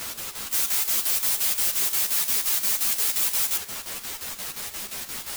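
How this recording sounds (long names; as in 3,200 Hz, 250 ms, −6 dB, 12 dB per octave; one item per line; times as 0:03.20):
a quantiser's noise floor 6 bits, dither triangular
chopped level 5.7 Hz, depth 65%, duty 70%
a shimmering, thickened sound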